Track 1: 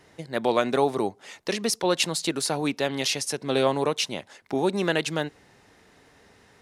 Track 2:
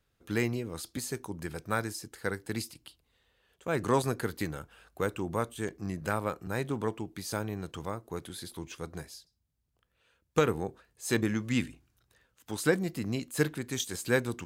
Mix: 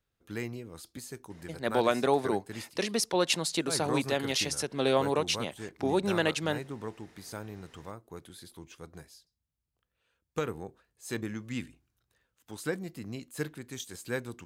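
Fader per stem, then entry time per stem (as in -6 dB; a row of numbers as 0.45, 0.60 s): -3.5, -7.0 dB; 1.30, 0.00 s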